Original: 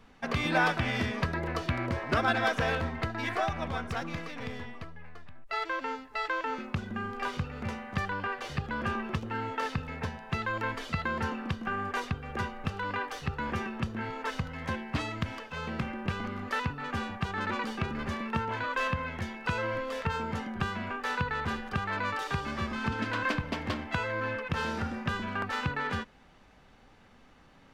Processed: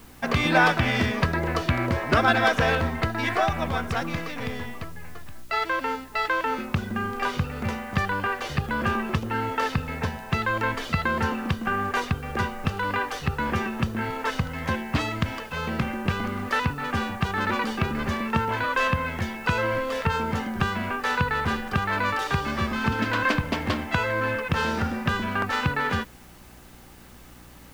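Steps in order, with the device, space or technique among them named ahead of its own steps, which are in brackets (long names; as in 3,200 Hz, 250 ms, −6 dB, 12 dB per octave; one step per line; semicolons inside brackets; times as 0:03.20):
video cassette with head-switching buzz (hum with harmonics 60 Hz, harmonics 6, −59 dBFS; white noise bed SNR 29 dB)
level +7 dB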